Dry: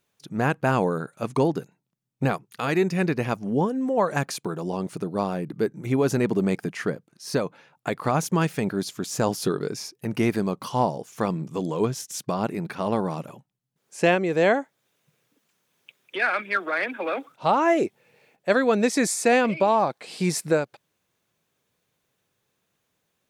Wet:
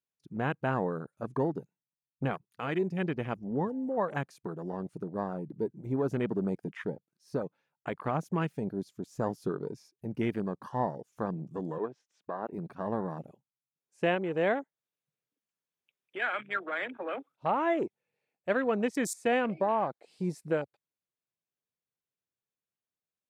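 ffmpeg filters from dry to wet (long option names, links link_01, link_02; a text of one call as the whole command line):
ffmpeg -i in.wav -filter_complex "[0:a]asettb=1/sr,asplit=3[link_01][link_02][link_03];[link_01]atrim=end=11.784[link_04];[link_02]atrim=start=11.78:end=12.53,asetpts=PTS-STARTPTS,afade=type=in:duration=0.004:curve=qsin,afade=type=out:start_time=0.746:duration=0.004:curve=qsin,highpass=360,lowpass=2600[link_05];[link_03]atrim=start=12.526[link_06];[link_04][link_05]acrossfade=duration=0.004:curve1=hsin:curve2=qsin[link_07];[link_07][link_06]acrossfade=duration=0.004:curve1=qsin:curve2=hsin,afwtdn=0.0251,volume=-8dB" out.wav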